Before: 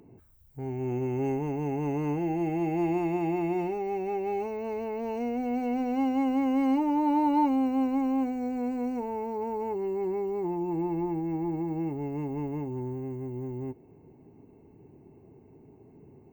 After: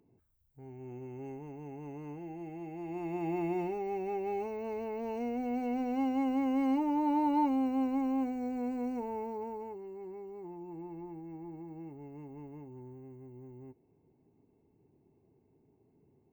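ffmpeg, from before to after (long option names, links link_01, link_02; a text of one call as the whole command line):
ffmpeg -i in.wav -af "volume=-4.5dB,afade=type=in:start_time=2.84:duration=0.55:silence=0.316228,afade=type=out:start_time=9.19:duration=0.64:silence=0.316228" out.wav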